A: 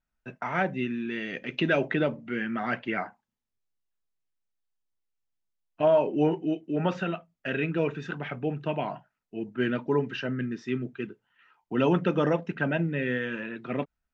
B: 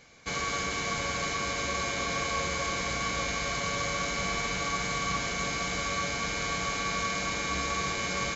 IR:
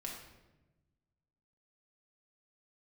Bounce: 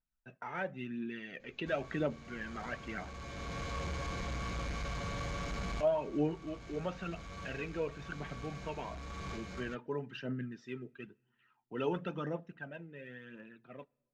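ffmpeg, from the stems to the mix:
-filter_complex "[0:a]aphaser=in_gain=1:out_gain=1:delay=2.5:decay=0.48:speed=0.97:type=triangular,volume=-12dB,afade=t=out:st=12.01:d=0.49:silence=0.398107,asplit=3[a][b][c];[b]volume=-24dB[d];[1:a]aemphasis=mode=reproduction:type=bsi,asoftclip=type=tanh:threshold=-28.5dB,adelay=1400,volume=-5.5dB[e];[c]apad=whole_len=430207[f];[e][f]sidechaincompress=threshold=-48dB:ratio=4:attack=22:release=796[g];[2:a]atrim=start_sample=2205[h];[d][h]afir=irnorm=-1:irlink=0[i];[a][g][i]amix=inputs=3:normalize=0,equalizer=f=2.2k:w=4.3:g=-2.5"

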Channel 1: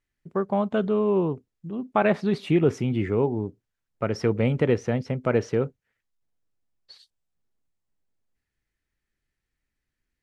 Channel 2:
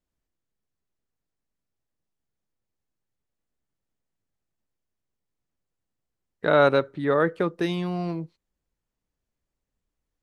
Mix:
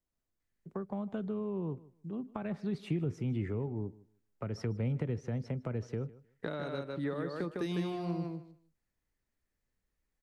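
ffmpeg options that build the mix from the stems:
-filter_complex "[0:a]acrossover=split=180[a][b];[b]acompressor=threshold=-31dB:ratio=4[c];[a][c]amix=inputs=2:normalize=0,adelay=400,volume=-6dB,asplit=2[d][e];[e]volume=-21dB[f];[1:a]acompressor=threshold=-24dB:ratio=6,volume=-5dB,asplit=2[g][h];[h]volume=-4dB[i];[f][i]amix=inputs=2:normalize=0,aecho=0:1:154|308|462:1|0.17|0.0289[j];[d][g][j]amix=inputs=3:normalize=0,equalizer=f=3.1k:w=1.5:g=-3,acrossover=split=330|3000[k][l][m];[l]acompressor=threshold=-39dB:ratio=6[n];[k][n][m]amix=inputs=3:normalize=0"

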